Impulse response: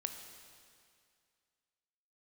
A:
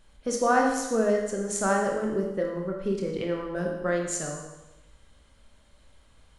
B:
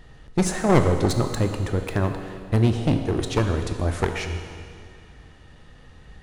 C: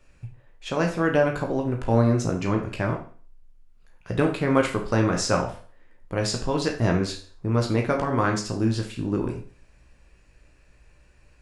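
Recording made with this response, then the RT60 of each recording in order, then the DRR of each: B; 1.0, 2.2, 0.40 seconds; 0.5, 5.5, 1.0 decibels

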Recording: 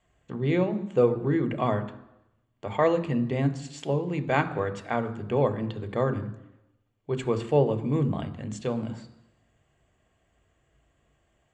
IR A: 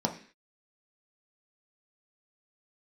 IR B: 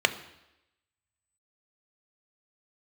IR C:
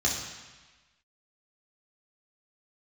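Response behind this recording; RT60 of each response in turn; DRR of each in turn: B; 0.45, 0.90, 1.3 seconds; 1.5, 9.0, −4.0 decibels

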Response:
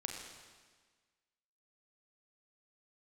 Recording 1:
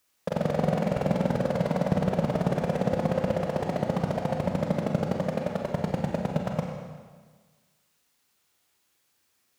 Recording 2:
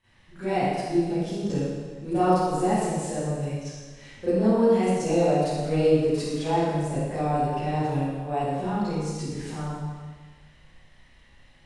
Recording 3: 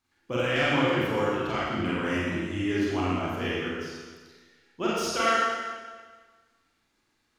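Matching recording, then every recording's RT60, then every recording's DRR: 1; 1.5, 1.5, 1.5 seconds; 1.0, −17.0, −9.0 decibels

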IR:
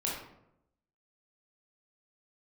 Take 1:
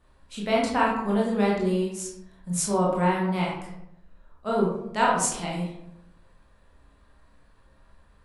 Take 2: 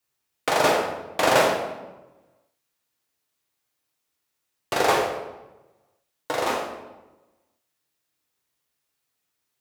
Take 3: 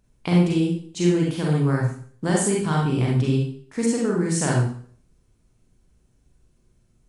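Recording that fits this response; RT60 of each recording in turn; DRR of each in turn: 1; 0.80, 1.1, 0.50 seconds; −4.5, −1.5, −3.0 decibels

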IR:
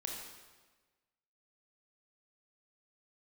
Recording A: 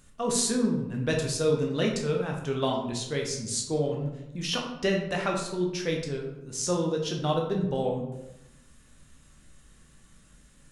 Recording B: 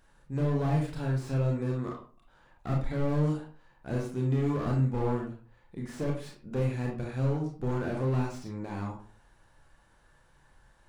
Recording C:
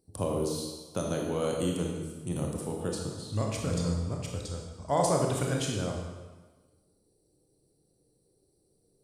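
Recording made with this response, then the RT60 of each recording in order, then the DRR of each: C; 0.90, 0.40, 1.3 seconds; −0.5, −1.0, −0.5 decibels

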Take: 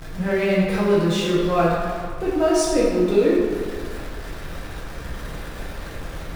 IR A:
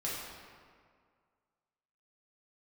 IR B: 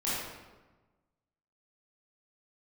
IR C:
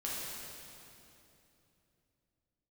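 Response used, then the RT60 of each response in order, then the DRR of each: A; 2.0, 1.2, 3.0 seconds; −7.0, −10.0, −7.0 decibels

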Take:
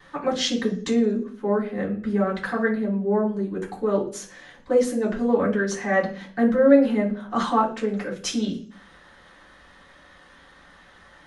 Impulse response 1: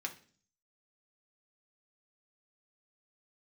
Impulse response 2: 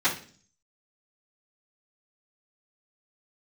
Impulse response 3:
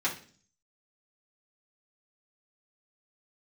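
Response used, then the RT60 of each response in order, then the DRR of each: 2; 0.45, 0.45, 0.45 seconds; 1.5, −16.5, −7.5 decibels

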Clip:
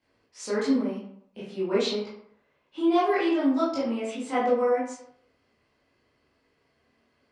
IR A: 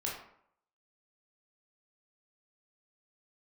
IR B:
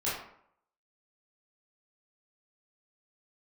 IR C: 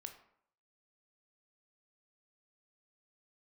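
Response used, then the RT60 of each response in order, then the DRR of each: B; 0.65, 0.65, 0.65 seconds; −4.0, −10.0, 5.5 decibels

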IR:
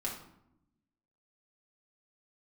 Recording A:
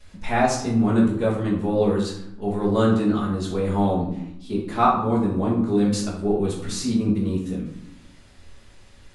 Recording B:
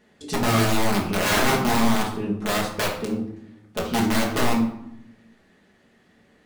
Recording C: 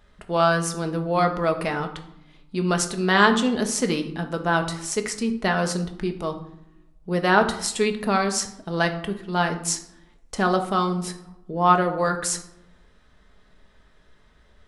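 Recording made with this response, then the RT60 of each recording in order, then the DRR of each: B; 0.80 s, 0.80 s, non-exponential decay; −11.5, −4.0, 5.0 decibels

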